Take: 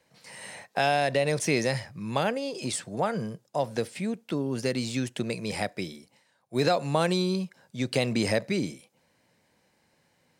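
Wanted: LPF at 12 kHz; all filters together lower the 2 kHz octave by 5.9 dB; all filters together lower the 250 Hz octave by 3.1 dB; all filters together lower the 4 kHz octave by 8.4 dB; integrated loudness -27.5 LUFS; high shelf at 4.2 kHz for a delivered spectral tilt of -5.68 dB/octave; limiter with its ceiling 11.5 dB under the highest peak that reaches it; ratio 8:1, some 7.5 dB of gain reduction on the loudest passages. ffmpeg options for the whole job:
-af "lowpass=12000,equalizer=f=250:t=o:g=-4,equalizer=f=2000:t=o:g=-4.5,equalizer=f=4000:t=o:g=-5,highshelf=f=4200:g=-7,acompressor=threshold=0.0355:ratio=8,volume=3.76,alimiter=limit=0.141:level=0:latency=1"

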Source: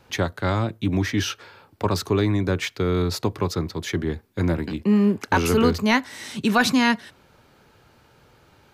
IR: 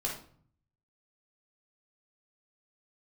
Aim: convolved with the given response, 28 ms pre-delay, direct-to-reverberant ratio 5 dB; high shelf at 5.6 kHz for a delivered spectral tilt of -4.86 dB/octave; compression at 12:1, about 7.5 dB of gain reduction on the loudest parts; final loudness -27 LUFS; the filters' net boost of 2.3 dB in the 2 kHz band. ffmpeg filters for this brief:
-filter_complex "[0:a]equalizer=f=2000:t=o:g=3.5,highshelf=f=5600:g=-5,acompressor=threshold=0.0891:ratio=12,asplit=2[s0][s1];[1:a]atrim=start_sample=2205,adelay=28[s2];[s1][s2]afir=irnorm=-1:irlink=0,volume=0.355[s3];[s0][s3]amix=inputs=2:normalize=0,volume=0.891"

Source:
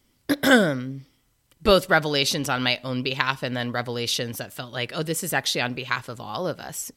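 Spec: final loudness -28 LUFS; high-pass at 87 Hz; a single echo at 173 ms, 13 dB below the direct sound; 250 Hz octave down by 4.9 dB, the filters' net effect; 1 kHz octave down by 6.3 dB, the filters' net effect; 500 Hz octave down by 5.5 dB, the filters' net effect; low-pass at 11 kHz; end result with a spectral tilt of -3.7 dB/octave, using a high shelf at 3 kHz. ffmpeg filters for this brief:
-af "highpass=87,lowpass=11000,equalizer=f=250:t=o:g=-4.5,equalizer=f=500:t=o:g=-3.5,equalizer=f=1000:t=o:g=-7,highshelf=f=3000:g=-4.5,aecho=1:1:173:0.224"

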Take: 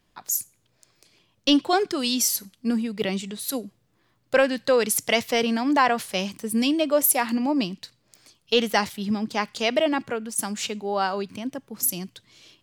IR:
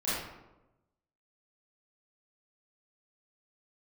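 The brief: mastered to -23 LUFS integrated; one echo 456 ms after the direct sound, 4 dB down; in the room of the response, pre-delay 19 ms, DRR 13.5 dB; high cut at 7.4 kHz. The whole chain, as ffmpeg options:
-filter_complex "[0:a]lowpass=7400,aecho=1:1:456:0.631,asplit=2[s0][s1];[1:a]atrim=start_sample=2205,adelay=19[s2];[s1][s2]afir=irnorm=-1:irlink=0,volume=0.0841[s3];[s0][s3]amix=inputs=2:normalize=0"

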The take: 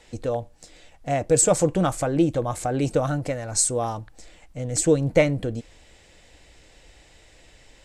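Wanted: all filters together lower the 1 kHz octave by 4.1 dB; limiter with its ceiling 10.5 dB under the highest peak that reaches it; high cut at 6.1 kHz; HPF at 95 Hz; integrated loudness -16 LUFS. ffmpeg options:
-af "highpass=95,lowpass=6100,equalizer=f=1000:t=o:g=-6.5,volume=3.98,alimiter=limit=0.562:level=0:latency=1"

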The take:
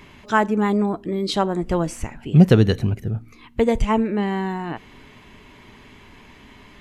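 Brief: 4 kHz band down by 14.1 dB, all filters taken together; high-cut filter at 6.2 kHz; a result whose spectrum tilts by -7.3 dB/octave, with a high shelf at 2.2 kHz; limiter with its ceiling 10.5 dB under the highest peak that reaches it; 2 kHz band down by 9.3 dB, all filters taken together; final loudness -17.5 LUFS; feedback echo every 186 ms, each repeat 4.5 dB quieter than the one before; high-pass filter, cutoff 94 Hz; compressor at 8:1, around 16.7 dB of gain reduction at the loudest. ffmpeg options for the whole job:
-af "highpass=94,lowpass=6200,equalizer=f=2000:t=o:g=-7,highshelf=f=2200:g=-9,equalizer=f=4000:t=o:g=-6.5,acompressor=threshold=0.0501:ratio=8,alimiter=level_in=1.26:limit=0.0631:level=0:latency=1,volume=0.794,aecho=1:1:186|372|558|744|930|1116|1302|1488|1674:0.596|0.357|0.214|0.129|0.0772|0.0463|0.0278|0.0167|0.01,volume=6.31"

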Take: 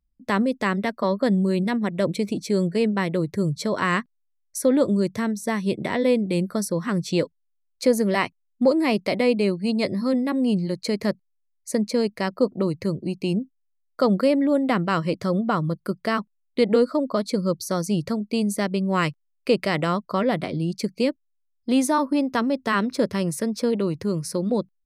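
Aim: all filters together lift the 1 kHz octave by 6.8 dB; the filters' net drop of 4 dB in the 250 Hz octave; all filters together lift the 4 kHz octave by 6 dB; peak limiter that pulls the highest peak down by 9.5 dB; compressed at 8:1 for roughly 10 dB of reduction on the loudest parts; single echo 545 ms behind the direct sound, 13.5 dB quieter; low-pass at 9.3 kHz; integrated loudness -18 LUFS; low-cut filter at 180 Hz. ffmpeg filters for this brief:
-af "highpass=180,lowpass=9300,equalizer=f=250:t=o:g=-3.5,equalizer=f=1000:t=o:g=8,equalizer=f=4000:t=o:g=7,acompressor=threshold=0.0708:ratio=8,alimiter=limit=0.133:level=0:latency=1,aecho=1:1:545:0.211,volume=3.98"

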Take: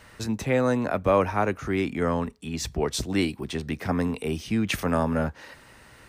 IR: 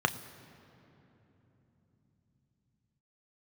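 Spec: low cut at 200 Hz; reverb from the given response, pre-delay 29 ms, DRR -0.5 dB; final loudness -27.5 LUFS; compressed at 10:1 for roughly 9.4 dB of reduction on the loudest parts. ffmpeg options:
-filter_complex "[0:a]highpass=200,acompressor=threshold=0.0562:ratio=10,asplit=2[s0][s1];[1:a]atrim=start_sample=2205,adelay=29[s2];[s1][s2]afir=irnorm=-1:irlink=0,volume=0.316[s3];[s0][s3]amix=inputs=2:normalize=0,volume=1.12"

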